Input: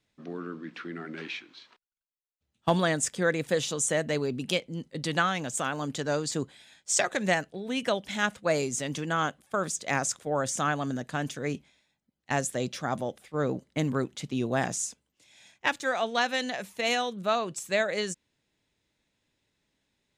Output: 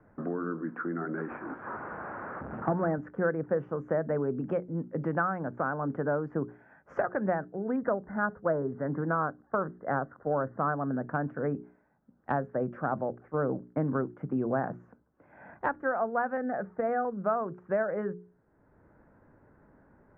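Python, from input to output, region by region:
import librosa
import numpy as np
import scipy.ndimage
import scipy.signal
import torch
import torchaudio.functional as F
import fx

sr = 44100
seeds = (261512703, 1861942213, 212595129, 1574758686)

y = fx.chain(x, sr, fx.delta_mod(bps=32000, step_db=-39.5),
    fx.highpass(hz=97.0, slope=12), at=(1.28, 2.98))
y = fx.chain(y, sr, fx.brickwall_lowpass(high_hz=2100.0),
    fx.doppler_dist(depth_ms=0.11), at=(7.76, 10.75))
y = fx.chain(y, sr, fx.lowpass(hz=2100.0, slope=24),
    fx.notch(hz=1000.0, q=5.2), at=(16.37, 17.05))
y = scipy.signal.sosfilt(scipy.signal.ellip(4, 1.0, 60, 1500.0, 'lowpass', fs=sr, output='sos'), y)
y = fx.hum_notches(y, sr, base_hz=60, count=7)
y = fx.band_squash(y, sr, depth_pct=70)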